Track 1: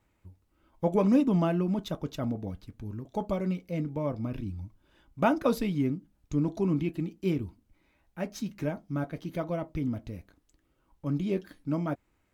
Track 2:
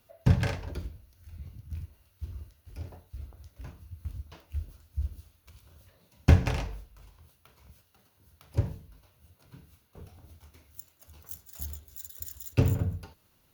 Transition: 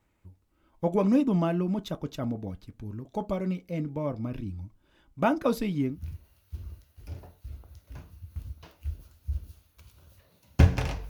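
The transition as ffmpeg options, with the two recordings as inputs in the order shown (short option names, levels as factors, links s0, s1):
-filter_complex "[0:a]apad=whole_dur=11.09,atrim=end=11.09,atrim=end=6.02,asetpts=PTS-STARTPTS[s0];[1:a]atrim=start=1.53:end=6.78,asetpts=PTS-STARTPTS[s1];[s0][s1]acrossfade=d=0.18:c1=tri:c2=tri"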